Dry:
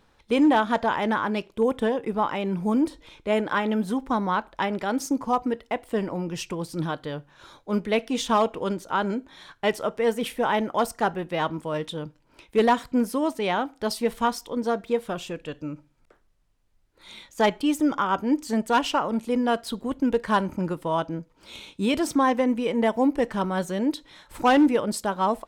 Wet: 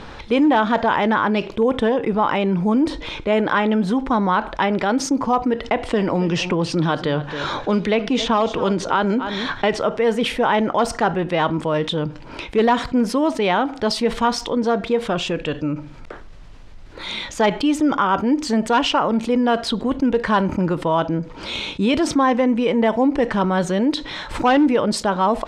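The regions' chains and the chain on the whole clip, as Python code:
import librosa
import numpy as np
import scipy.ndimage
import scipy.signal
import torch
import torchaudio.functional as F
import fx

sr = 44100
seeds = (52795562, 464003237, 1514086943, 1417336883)

y = fx.chain(x, sr, fx.lowpass(hz=8500.0, slope=12),
    fx.echo_single(ms=271, db=-20.0),
    fx.band_squash(depth_pct=70), at=(5.64, 9.82))
y = scipy.signal.sosfilt(scipy.signal.butter(2, 4900.0, 'lowpass', fs=sr, output='sos'), y)
y = fx.env_flatten(y, sr, amount_pct=50)
y = y * 10.0 ** (2.0 / 20.0)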